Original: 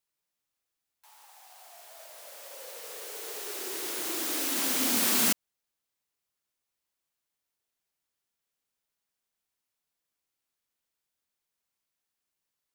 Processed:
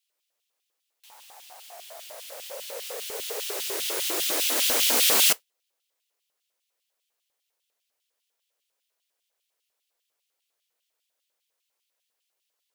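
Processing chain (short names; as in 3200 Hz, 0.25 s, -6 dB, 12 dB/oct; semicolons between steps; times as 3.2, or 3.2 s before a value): modulation noise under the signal 16 dB; LFO high-pass square 5 Hz 500–3000 Hz; gain +4.5 dB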